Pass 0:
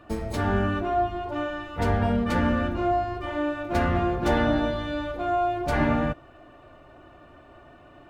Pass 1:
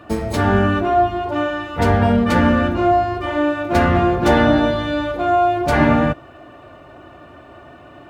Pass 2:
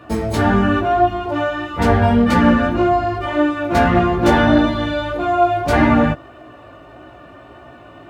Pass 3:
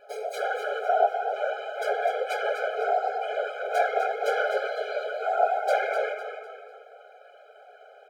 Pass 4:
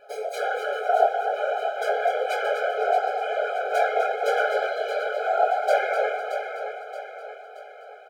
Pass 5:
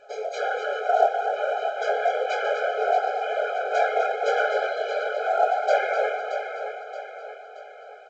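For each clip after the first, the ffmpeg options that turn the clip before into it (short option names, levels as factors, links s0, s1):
-af "highpass=66,volume=2.82"
-af "flanger=delay=16:depth=2.4:speed=1.7,volume=1.58"
-filter_complex "[0:a]afftfilt=real='hypot(re,im)*cos(2*PI*random(0))':imag='hypot(re,im)*sin(2*PI*random(1))':win_size=512:overlap=0.75,asplit=2[s0][s1];[s1]asplit=4[s2][s3][s4][s5];[s2]adelay=251,afreqshift=53,volume=0.376[s6];[s3]adelay=502,afreqshift=106,volume=0.135[s7];[s4]adelay=753,afreqshift=159,volume=0.049[s8];[s5]adelay=1004,afreqshift=212,volume=0.0176[s9];[s6][s7][s8][s9]amix=inputs=4:normalize=0[s10];[s0][s10]amix=inputs=2:normalize=0,afftfilt=real='re*eq(mod(floor(b*sr/1024/420),2),1)':imag='im*eq(mod(floor(b*sr/1024/420),2),1)':win_size=1024:overlap=0.75,volume=0.841"
-filter_complex "[0:a]asplit=2[s0][s1];[s1]adelay=23,volume=0.447[s2];[s0][s2]amix=inputs=2:normalize=0,asplit=2[s3][s4];[s4]aecho=0:1:625|1250|1875|2500|3125:0.355|0.163|0.0751|0.0345|0.0159[s5];[s3][s5]amix=inputs=2:normalize=0,volume=1.19"
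-ar 16000 -c:a pcm_alaw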